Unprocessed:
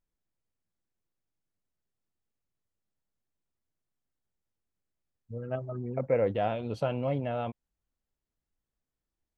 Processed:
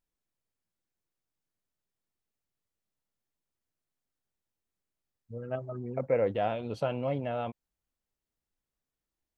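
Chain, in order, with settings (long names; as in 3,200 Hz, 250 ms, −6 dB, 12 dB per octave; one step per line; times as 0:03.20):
low-shelf EQ 190 Hz −4.5 dB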